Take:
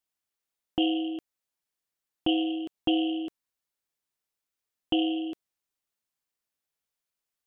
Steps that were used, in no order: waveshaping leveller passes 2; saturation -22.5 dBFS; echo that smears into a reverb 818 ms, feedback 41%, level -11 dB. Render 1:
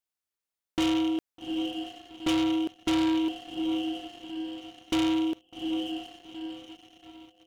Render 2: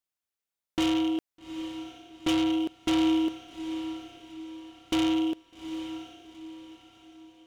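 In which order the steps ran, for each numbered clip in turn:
echo that smears into a reverb > waveshaping leveller > saturation; waveshaping leveller > saturation > echo that smears into a reverb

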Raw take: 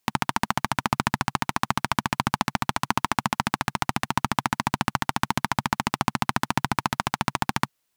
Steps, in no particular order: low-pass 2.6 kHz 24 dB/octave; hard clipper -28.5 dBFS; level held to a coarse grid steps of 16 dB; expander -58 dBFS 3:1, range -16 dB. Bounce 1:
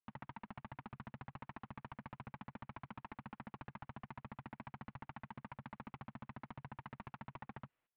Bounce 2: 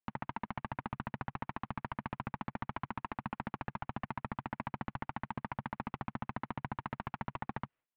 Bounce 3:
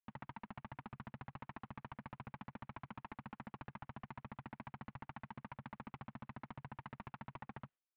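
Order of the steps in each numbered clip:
hard clipper > expander > level held to a coarse grid > low-pass; level held to a coarse grid > hard clipper > low-pass > expander; hard clipper > low-pass > level held to a coarse grid > expander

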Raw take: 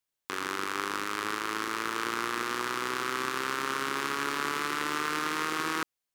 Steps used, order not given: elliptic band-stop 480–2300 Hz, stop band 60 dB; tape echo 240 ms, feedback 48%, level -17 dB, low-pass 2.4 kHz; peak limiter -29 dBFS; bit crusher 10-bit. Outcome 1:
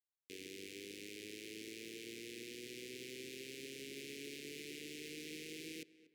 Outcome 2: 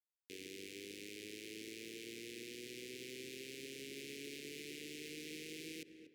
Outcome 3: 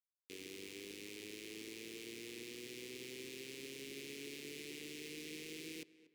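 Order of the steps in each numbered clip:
bit crusher > peak limiter > elliptic band-stop > tape echo; bit crusher > tape echo > peak limiter > elliptic band-stop; peak limiter > elliptic band-stop > bit crusher > tape echo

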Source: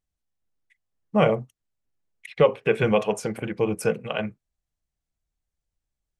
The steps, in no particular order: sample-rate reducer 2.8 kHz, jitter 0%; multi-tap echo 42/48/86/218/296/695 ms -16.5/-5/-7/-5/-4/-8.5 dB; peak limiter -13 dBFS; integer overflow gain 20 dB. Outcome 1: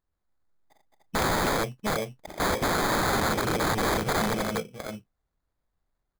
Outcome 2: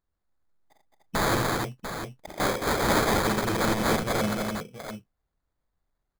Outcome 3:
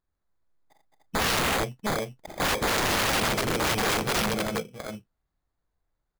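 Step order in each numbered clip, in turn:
multi-tap echo > sample-rate reducer > peak limiter > integer overflow; peak limiter > integer overflow > multi-tap echo > sample-rate reducer; sample-rate reducer > multi-tap echo > peak limiter > integer overflow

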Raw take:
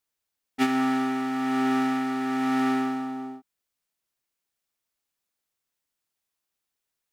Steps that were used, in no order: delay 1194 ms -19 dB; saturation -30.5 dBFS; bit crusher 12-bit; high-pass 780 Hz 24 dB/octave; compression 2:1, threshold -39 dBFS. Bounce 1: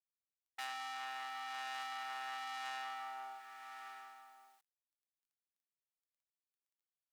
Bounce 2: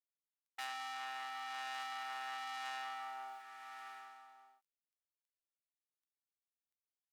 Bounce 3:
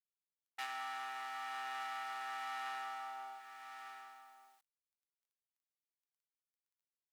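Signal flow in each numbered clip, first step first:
delay > saturation > compression > bit crusher > high-pass; bit crusher > delay > saturation > compression > high-pass; delay > compression > bit crusher > saturation > high-pass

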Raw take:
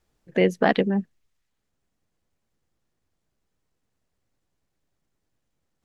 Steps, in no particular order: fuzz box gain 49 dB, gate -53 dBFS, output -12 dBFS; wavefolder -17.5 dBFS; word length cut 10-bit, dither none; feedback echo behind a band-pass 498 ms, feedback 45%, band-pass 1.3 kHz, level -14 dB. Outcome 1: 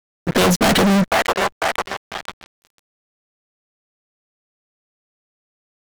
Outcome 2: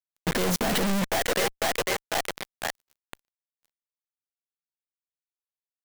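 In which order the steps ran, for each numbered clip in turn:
wavefolder > feedback echo behind a band-pass > fuzz box > word length cut; feedback echo behind a band-pass > word length cut > fuzz box > wavefolder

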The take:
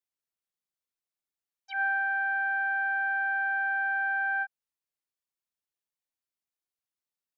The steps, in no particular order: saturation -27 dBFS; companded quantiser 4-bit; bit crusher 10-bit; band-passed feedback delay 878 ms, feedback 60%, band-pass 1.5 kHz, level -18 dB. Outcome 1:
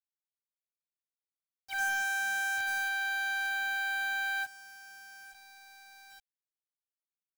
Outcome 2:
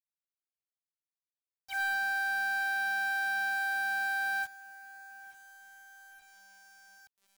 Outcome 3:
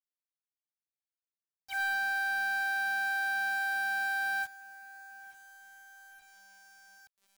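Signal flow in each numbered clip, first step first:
saturation > band-passed feedback delay > companded quantiser > bit crusher; companded quantiser > band-passed feedback delay > saturation > bit crusher; companded quantiser > band-passed feedback delay > bit crusher > saturation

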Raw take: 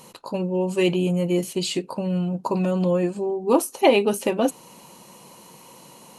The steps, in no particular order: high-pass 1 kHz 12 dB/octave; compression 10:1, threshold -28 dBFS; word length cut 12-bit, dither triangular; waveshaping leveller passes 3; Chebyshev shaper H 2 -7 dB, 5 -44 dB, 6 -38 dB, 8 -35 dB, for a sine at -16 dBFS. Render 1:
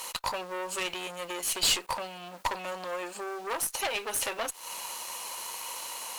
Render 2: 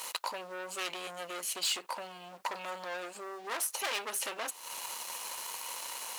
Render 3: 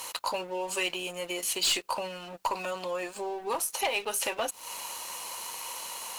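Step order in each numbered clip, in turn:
compression > word length cut > waveshaping leveller > high-pass > Chebyshev shaper; Chebyshev shaper > waveshaping leveller > compression > word length cut > high-pass; compression > high-pass > Chebyshev shaper > waveshaping leveller > word length cut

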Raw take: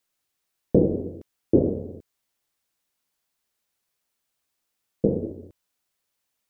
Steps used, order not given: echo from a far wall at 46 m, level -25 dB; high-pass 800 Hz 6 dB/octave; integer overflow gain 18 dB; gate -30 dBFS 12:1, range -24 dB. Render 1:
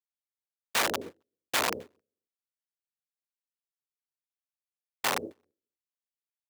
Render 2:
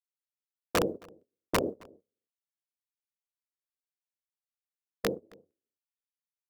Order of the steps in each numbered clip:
integer overflow > echo from a far wall > gate > high-pass; high-pass > gate > integer overflow > echo from a far wall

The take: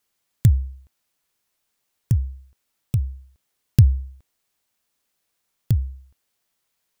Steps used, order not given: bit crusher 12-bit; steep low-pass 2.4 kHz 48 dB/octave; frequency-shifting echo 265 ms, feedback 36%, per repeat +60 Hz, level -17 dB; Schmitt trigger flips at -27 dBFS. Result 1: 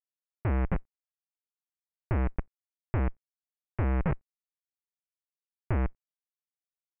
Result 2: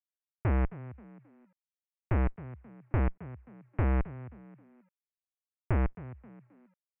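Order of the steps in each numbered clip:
frequency-shifting echo > Schmitt trigger > bit crusher > steep low-pass; Schmitt trigger > frequency-shifting echo > bit crusher > steep low-pass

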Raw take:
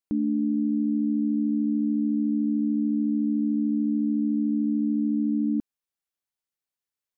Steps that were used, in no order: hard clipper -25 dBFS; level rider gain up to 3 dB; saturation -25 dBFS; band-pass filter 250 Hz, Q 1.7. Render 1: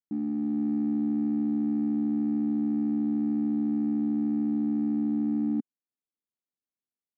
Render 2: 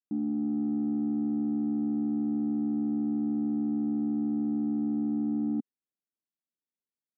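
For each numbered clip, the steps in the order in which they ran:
saturation > band-pass filter > hard clipper > level rider; level rider > saturation > hard clipper > band-pass filter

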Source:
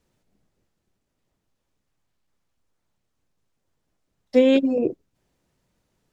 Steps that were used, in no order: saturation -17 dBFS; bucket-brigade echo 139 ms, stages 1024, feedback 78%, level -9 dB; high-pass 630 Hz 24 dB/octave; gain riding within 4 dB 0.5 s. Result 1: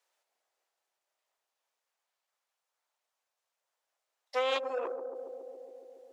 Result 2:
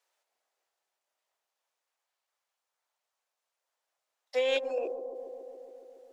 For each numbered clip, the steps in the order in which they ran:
gain riding > bucket-brigade echo > saturation > high-pass; high-pass > gain riding > saturation > bucket-brigade echo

